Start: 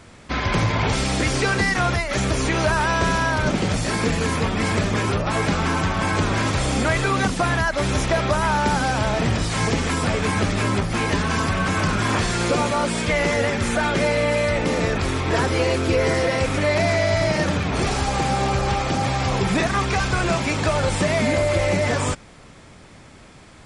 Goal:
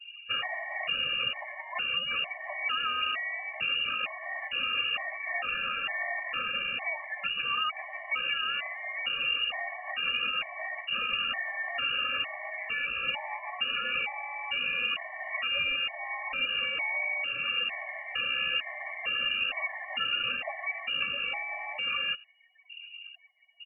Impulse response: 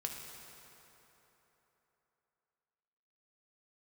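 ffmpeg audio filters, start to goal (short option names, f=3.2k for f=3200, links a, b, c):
-filter_complex "[0:a]asettb=1/sr,asplit=3[a][b][c];[a]atrim=end=4.994[d];[b]atrim=start=4.99:end=7.17,asetpts=PTS-STARTPTS,afade=t=in:d=0.004:c=qsin,afade=t=out:st=2.176:d=0.004:c=qsin,highpass=f=150:p=1[e];[c]atrim=start=7.166[f];[d][e]acrossfade=d=0.004:c1=hsin:c2=qsin[g];[g][f]acrossfade=d=0.004:c1=qsin:c2=hsin,afftdn=nr=32:nf=-40,aecho=1:1:1.8:0.95,adynamicequalizer=threshold=0.0251:dfrequency=540:dqfactor=4.6:tfrequency=540:tqfactor=4.6:attack=5:release=100:ratio=0.375:range=2.5:mode=cutabove:tftype=bell,acompressor=threshold=-30dB:ratio=3,lowpass=f=2.5k:t=q:w=0.5098,lowpass=f=2.5k:t=q:w=0.6013,lowpass=f=2.5k:t=q:w=0.9,lowpass=f=2.5k:t=q:w=2.563,afreqshift=-2900,afftfilt=real='re*gt(sin(2*PI*1.1*pts/sr)*(1-2*mod(floor(b*sr/1024/580),2)),0)':imag='im*gt(sin(2*PI*1.1*pts/sr)*(1-2*mod(floor(b*sr/1024/580),2)),0)':win_size=1024:overlap=0.75"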